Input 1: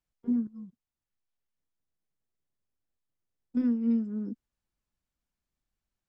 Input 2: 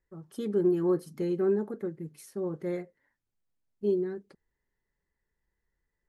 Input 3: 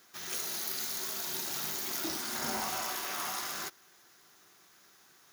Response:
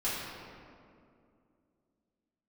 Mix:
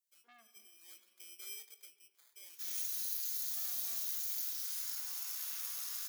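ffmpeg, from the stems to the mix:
-filter_complex "[0:a]highpass=f=130:w=0.5412,highpass=f=130:w=1.3066,aecho=1:1:4.2:0.42,asoftclip=type=tanh:threshold=0.0211,volume=1.26,asplit=3[s0][s1][s2];[s1]volume=0.158[s3];[1:a]aecho=1:1:6.9:0.47,acrusher=samples=16:mix=1:aa=0.000001,volume=0.422,asplit=2[s4][s5];[s5]volume=0.1[s6];[2:a]acompressor=threshold=0.0141:ratio=6,adelay=2450,volume=0.596,asplit=2[s7][s8];[s8]volume=0.668[s9];[s2]apad=whole_len=268832[s10];[s4][s10]sidechaincompress=threshold=0.002:ratio=8:attack=16:release=422[s11];[3:a]atrim=start_sample=2205[s12];[s3][s6][s9]amix=inputs=3:normalize=0[s13];[s13][s12]afir=irnorm=-1:irlink=0[s14];[s0][s11][s7][s14]amix=inputs=4:normalize=0,highpass=f=1200:p=1,aderivative"

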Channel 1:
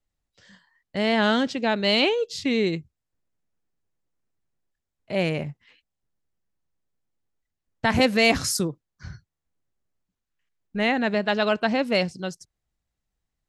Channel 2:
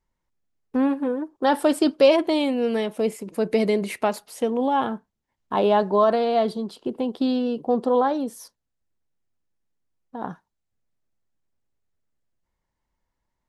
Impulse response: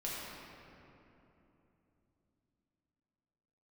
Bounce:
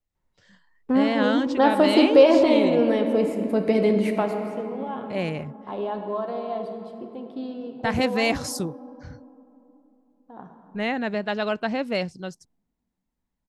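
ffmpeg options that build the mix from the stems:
-filter_complex "[0:a]highshelf=f=6300:g=8.5,volume=0.708[s0];[1:a]adelay=150,volume=0.794,afade=t=out:st=4.11:d=0.29:silence=0.251189,asplit=2[s1][s2];[s2]volume=0.668[s3];[2:a]atrim=start_sample=2205[s4];[s3][s4]afir=irnorm=-1:irlink=0[s5];[s0][s1][s5]amix=inputs=3:normalize=0,highshelf=f=3800:g=-10.5"

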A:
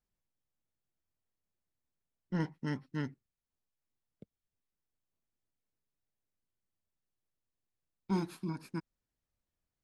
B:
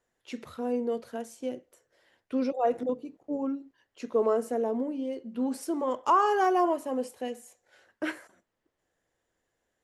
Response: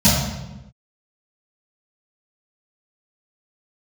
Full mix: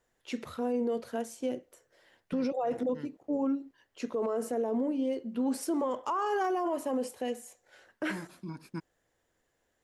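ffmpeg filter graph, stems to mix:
-filter_complex "[0:a]volume=1.06[s0];[1:a]volume=1.33,asplit=2[s1][s2];[s2]apad=whole_len=433618[s3];[s0][s3]sidechaincompress=threshold=0.0224:ratio=8:attack=16:release=949[s4];[s4][s1]amix=inputs=2:normalize=0,alimiter=limit=0.0668:level=0:latency=1:release=20"

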